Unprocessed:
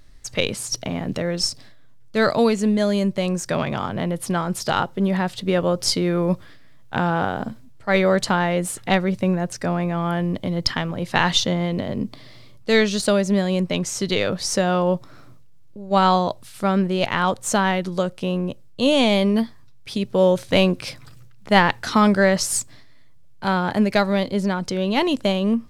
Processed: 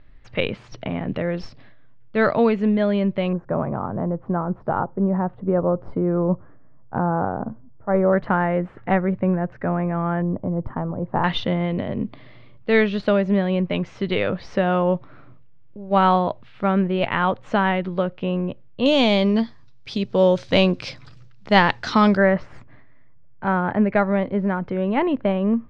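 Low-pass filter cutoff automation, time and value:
low-pass filter 24 dB per octave
2,900 Hz
from 0:03.33 1,200 Hz
from 0:08.13 1,900 Hz
from 0:10.22 1,100 Hz
from 0:11.24 2,900 Hz
from 0:18.86 5,500 Hz
from 0:22.17 2,100 Hz

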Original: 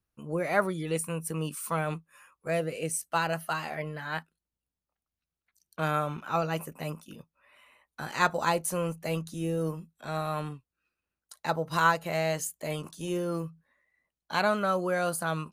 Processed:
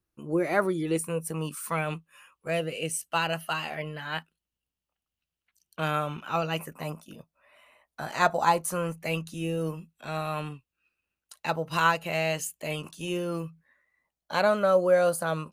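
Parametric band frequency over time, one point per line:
parametric band +10 dB 0.36 octaves
0:01.03 340 Hz
0:01.87 2,900 Hz
0:06.54 2,900 Hz
0:06.95 660 Hz
0:08.32 660 Hz
0:09.15 2,700 Hz
0:13.47 2,700 Hz
0:14.34 550 Hz

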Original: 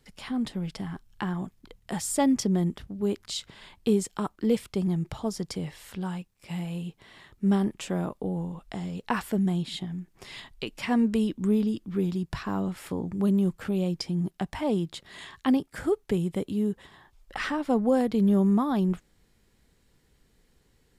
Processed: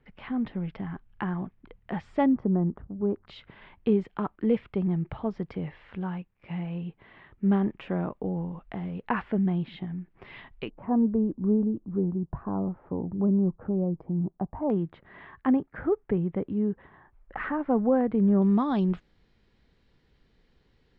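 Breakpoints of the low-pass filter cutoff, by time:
low-pass filter 24 dB per octave
2,500 Hz
from 0:02.26 1,300 Hz
from 0:03.27 2,500 Hz
from 0:10.70 1,000 Hz
from 0:14.70 1,900 Hz
from 0:18.42 4,500 Hz

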